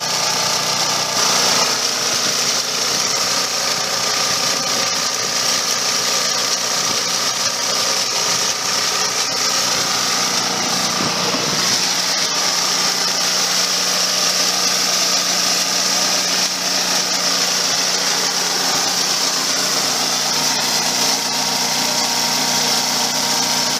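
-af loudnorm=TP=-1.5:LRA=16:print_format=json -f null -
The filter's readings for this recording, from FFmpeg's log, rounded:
"input_i" : "-15.2",
"input_tp" : "-4.2",
"input_lra" : "1.4",
"input_thresh" : "-25.2",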